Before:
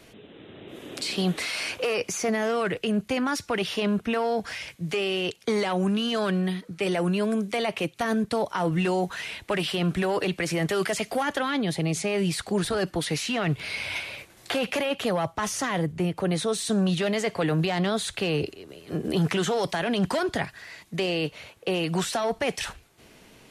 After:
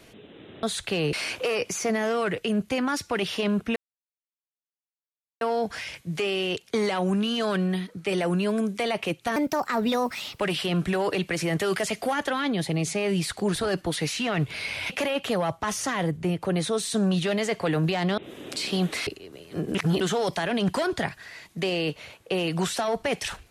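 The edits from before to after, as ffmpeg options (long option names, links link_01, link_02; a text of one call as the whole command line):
ffmpeg -i in.wav -filter_complex "[0:a]asplit=11[link_01][link_02][link_03][link_04][link_05][link_06][link_07][link_08][link_09][link_10][link_11];[link_01]atrim=end=0.632[link_12];[link_02]atrim=start=17.928:end=18.432[link_13];[link_03]atrim=start=1.518:end=4.15,asetpts=PTS-STARTPTS,afade=type=out:start_time=2.628:duration=0.004:curve=hsin,apad=pad_dur=1.65[link_14];[link_04]atrim=start=4.15:end=8.104,asetpts=PTS-STARTPTS,afade=type=in:duration=0.004:curve=hsin[link_15];[link_05]atrim=start=8.1:end=9.49,asetpts=PTS-STARTPTS,asetrate=59094,aresample=44100[link_16];[link_06]atrim=start=9.486:end=13.992[link_17];[link_07]atrim=start=14.648:end=17.932[link_18];[link_08]atrim=start=0.628:end=1.522[link_19];[link_09]atrim=start=18.428:end=19.112[link_20];[link_10]atrim=start=19.108:end=19.372,asetpts=PTS-STARTPTS,areverse[link_21];[link_11]atrim=start=19.368[link_22];[link_12][link_13]acrossfade=duration=0.004:curve1=hsin:curve2=hsin[link_23];[link_14][link_15]concat=n=2:v=0:a=1[link_24];[link_23][link_24]acrossfade=duration=0.004:curve1=hsin:curve2=hsin[link_25];[link_25][link_16]acrossfade=duration=0.004:curve1=hsin:curve2=hsin[link_26];[link_26][link_17]acrossfade=duration=0.004:curve1=hsin:curve2=hsin[link_27];[link_27][link_18]acrossfade=duration=0.004:curve1=hsin:curve2=hsin[link_28];[link_28][link_19]acrossfade=duration=0.004:curve1=hsin:curve2=hsin[link_29];[link_29][link_20]acrossfade=duration=0.004:curve1=hsin:curve2=hsin[link_30];[link_30][link_21]acrossfade=duration=0.004:curve1=hsin:curve2=hsin[link_31];[link_31][link_22]acrossfade=duration=0.004:curve1=hsin:curve2=hsin" out.wav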